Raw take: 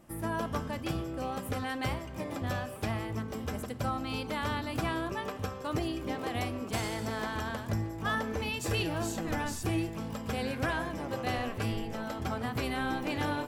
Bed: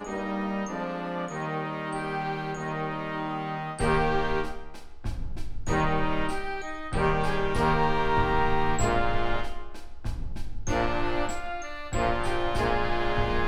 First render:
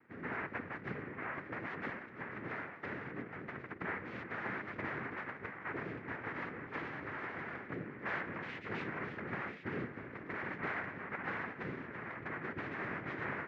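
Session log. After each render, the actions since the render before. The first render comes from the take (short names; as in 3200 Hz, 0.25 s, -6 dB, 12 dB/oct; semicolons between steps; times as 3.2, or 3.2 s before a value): noise vocoder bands 3; ladder low-pass 2400 Hz, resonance 50%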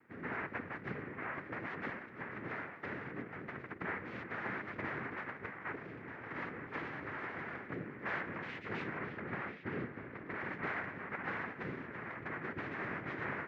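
5.75–6.31 compressor, threshold -43 dBFS; 8.97–10.41 air absorption 84 m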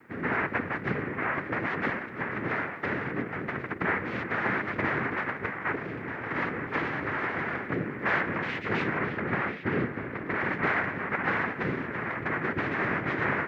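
gain +12 dB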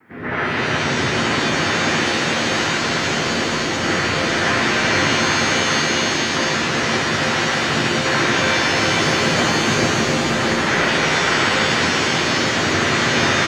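echo 0.44 s -5.5 dB; shimmer reverb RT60 3.4 s, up +7 st, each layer -2 dB, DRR -7.5 dB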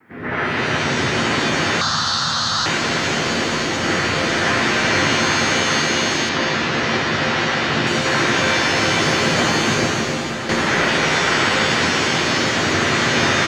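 1.81–2.66 EQ curve 130 Hz 0 dB, 240 Hz -9 dB, 370 Hz -20 dB, 1300 Hz +6 dB, 2300 Hz -18 dB, 4100 Hz +9 dB, 9400 Hz -5 dB; 6.29–7.87 LPF 5100 Hz; 9.66–10.49 fade out, to -8 dB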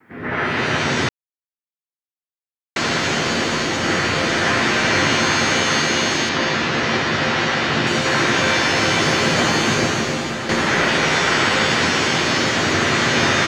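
1.09–2.76 mute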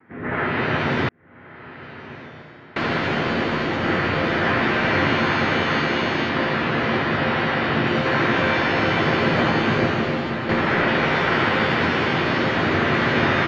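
air absorption 350 m; diffused feedback echo 1.28 s, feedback 56%, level -15.5 dB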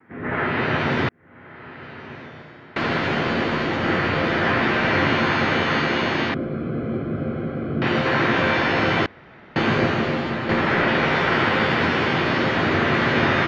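6.34–7.82 running mean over 48 samples; 9.06–9.56 room tone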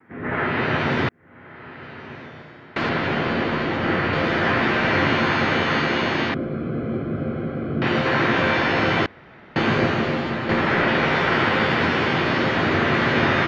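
2.89–4.13 air absorption 88 m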